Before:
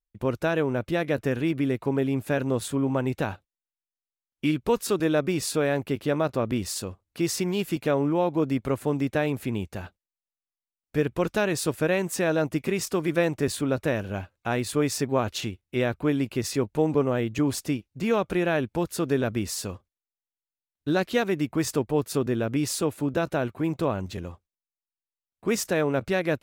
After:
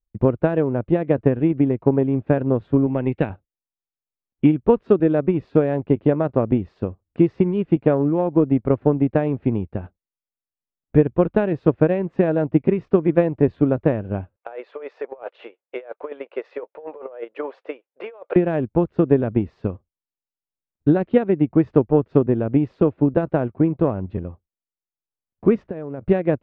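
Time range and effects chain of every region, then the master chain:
0:02.86–0:03.30: high-pass filter 94 Hz 6 dB per octave + high shelf with overshoot 1,600 Hz +7 dB, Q 1.5
0:14.36–0:18.36: Chebyshev high-pass filter 490 Hz, order 4 + high-shelf EQ 9,200 Hz −11 dB + compressor whose output falls as the input rises −36 dBFS
0:25.62–0:26.09: high-shelf EQ 4,400 Hz −9.5 dB + downward compressor 4 to 1, threshold −32 dBFS
whole clip: low-pass filter 3,000 Hz 24 dB per octave; tilt shelving filter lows +10 dB, about 1,200 Hz; transient designer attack +8 dB, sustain −4 dB; level −4 dB

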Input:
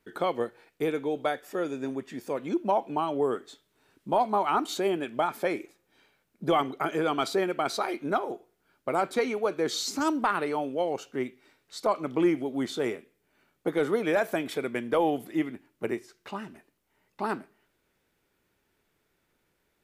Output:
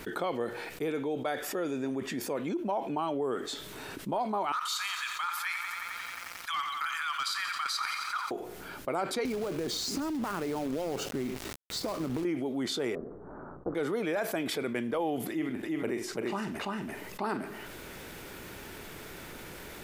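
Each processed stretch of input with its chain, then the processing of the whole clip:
0:04.52–0:08.31: Butterworth high-pass 1,100 Hz 48 dB per octave + hard clipping −24.5 dBFS + feedback echo at a low word length 89 ms, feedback 80%, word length 10 bits, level −13 dB
0:09.25–0:12.25: downward compressor 20 to 1, threshold −36 dBFS + log-companded quantiser 4 bits + low-shelf EQ 480 Hz +12 dB
0:12.95–0:13.75: Butterworth low-pass 1,300 Hz 48 dB per octave + amplitude modulation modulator 250 Hz, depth 35%
0:15.29–0:17.37: double-tracking delay 47 ms −14 dB + single-tap delay 338 ms −3 dB
whole clip: dynamic equaliser 4,800 Hz, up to +6 dB, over −59 dBFS, Q 7; envelope flattener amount 70%; level −9 dB

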